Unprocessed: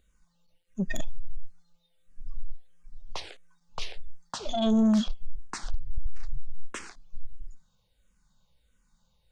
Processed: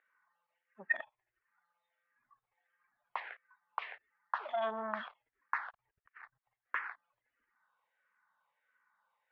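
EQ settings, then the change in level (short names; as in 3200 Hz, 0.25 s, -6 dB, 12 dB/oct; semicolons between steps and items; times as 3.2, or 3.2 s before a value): resonant high-pass 960 Hz, resonance Q 1.7; ladder low-pass 2100 Hz, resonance 55%; air absorption 130 m; +7.5 dB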